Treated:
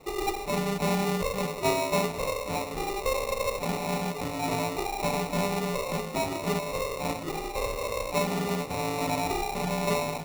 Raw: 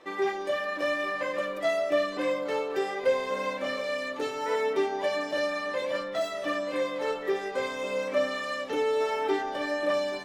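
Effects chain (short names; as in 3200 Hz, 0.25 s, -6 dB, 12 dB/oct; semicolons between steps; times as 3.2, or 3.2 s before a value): Bessel high-pass 960 Hz, order 4; sample-rate reducer 1600 Hz, jitter 0%; gain +6.5 dB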